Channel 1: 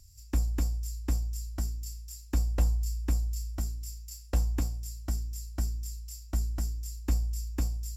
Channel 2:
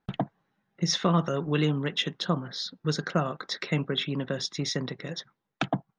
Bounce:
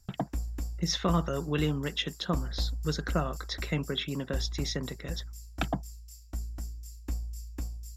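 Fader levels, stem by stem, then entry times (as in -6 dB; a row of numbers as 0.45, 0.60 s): -6.5, -3.5 dB; 0.00, 0.00 s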